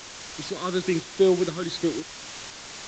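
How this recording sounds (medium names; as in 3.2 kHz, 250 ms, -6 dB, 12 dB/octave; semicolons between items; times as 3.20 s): phasing stages 12, 1.1 Hz, lowest notch 760–2000 Hz; a quantiser's noise floor 6-bit, dither triangular; tremolo saw up 2 Hz, depth 40%; Vorbis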